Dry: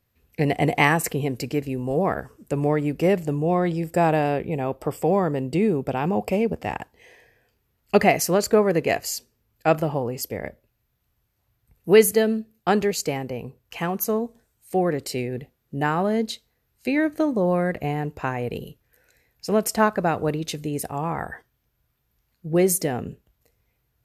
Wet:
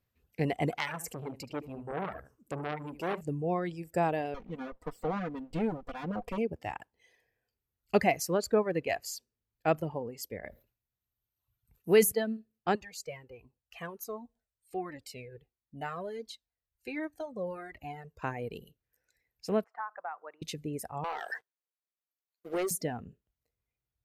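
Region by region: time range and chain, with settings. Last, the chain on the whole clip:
0:00.71–0:03.21: notch filter 1,800 Hz, Q 20 + single-tap delay 74 ms −10 dB + saturating transformer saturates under 2,500 Hz
0:04.34–0:06.38: lower of the sound and its delayed copy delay 4.1 ms + high-shelf EQ 4,400 Hz −7 dB
0:10.43–0:12.12: high-shelf EQ 9,500 Hz +9 dB + level that may fall only so fast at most 130 dB per second
0:12.75–0:18.22: parametric band 170 Hz −4.5 dB 2.2 octaves + flanger whose copies keep moving one way falling 1.4 Hz
0:19.64–0:20.42: flat-topped band-pass 1,100 Hz, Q 1.3 + downward compressor 4 to 1, threshold −24 dBFS
0:21.04–0:22.71: high-pass filter 390 Hz 24 dB per octave + downward compressor 2 to 1, threshold −31 dBFS + leveller curve on the samples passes 3
whole clip: reverb reduction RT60 1.6 s; high-shelf EQ 6,800 Hz −4.5 dB; level −8 dB

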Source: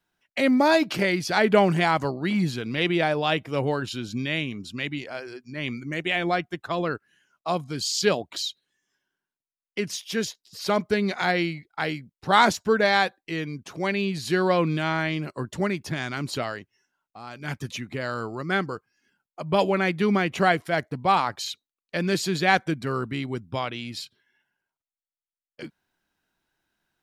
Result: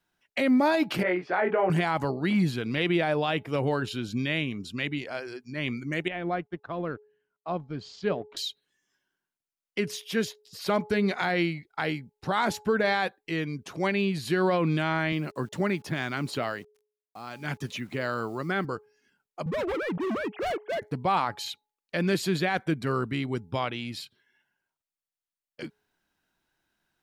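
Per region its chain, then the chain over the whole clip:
0:01.03–0:01.70: band-pass filter 120–3,600 Hz + three-way crossover with the lows and the highs turned down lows −19 dB, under 310 Hz, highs −22 dB, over 2,200 Hz + double-tracking delay 22 ms −3 dB
0:06.08–0:08.37: mu-law and A-law mismatch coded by A + shaped tremolo saw up 1.6 Hz, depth 35% + head-to-tape spacing loss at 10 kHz 37 dB
0:15.12–0:18.65: high-pass filter 110 Hz + high-shelf EQ 9,900 Hz −4.5 dB + bit-depth reduction 10 bits, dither none
0:19.46–0:20.82: three sine waves on the formant tracks + low-pass filter 1,400 Hz 6 dB per octave + gain into a clipping stage and back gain 27.5 dB
whole clip: hum removal 422.2 Hz, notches 2; dynamic equaliser 6,000 Hz, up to −7 dB, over −46 dBFS, Q 1.2; brickwall limiter −16 dBFS

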